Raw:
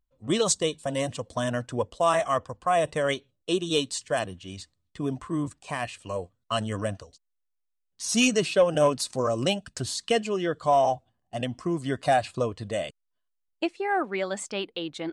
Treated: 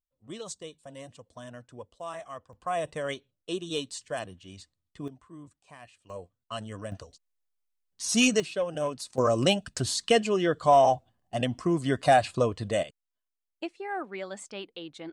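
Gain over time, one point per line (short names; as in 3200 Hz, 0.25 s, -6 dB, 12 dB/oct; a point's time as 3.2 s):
-16 dB
from 2.53 s -7 dB
from 5.08 s -18 dB
from 6.1 s -9 dB
from 6.92 s -0.5 dB
from 8.4 s -9 dB
from 9.18 s +2 dB
from 12.83 s -8 dB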